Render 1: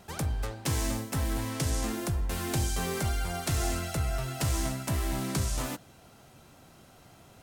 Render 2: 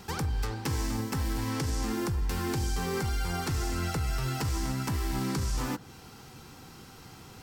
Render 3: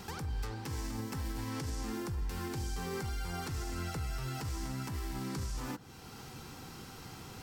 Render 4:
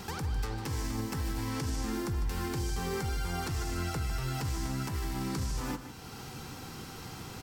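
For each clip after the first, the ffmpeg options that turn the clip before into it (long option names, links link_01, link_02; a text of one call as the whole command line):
ffmpeg -i in.wav -filter_complex "[0:a]superequalizer=8b=0.282:14b=1.58:16b=0.708,acrossover=split=1900[link_01][link_02];[link_01]alimiter=level_in=6.5dB:limit=-24dB:level=0:latency=1,volume=-6.5dB[link_03];[link_02]acompressor=threshold=-46dB:ratio=6[link_04];[link_03][link_04]amix=inputs=2:normalize=0,volume=6.5dB" out.wav
ffmpeg -i in.wav -af "alimiter=level_in=6.5dB:limit=-24dB:level=0:latency=1:release=457,volume=-6.5dB,volume=1dB" out.wav
ffmpeg -i in.wav -af "aecho=1:1:152:0.282,volume=4dB" out.wav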